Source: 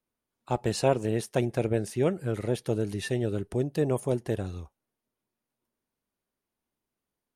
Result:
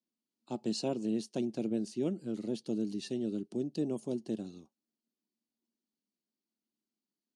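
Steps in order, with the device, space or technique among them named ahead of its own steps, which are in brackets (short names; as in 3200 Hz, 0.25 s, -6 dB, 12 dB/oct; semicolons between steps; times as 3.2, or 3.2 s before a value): television speaker (speaker cabinet 160–6700 Hz, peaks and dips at 220 Hz +10 dB, 310 Hz +6 dB, 470 Hz -4 dB, 2900 Hz +7 dB, 4400 Hz +9 dB); EQ curve 390 Hz 0 dB, 1900 Hz -13 dB, 12000 Hz +13 dB; gain -8.5 dB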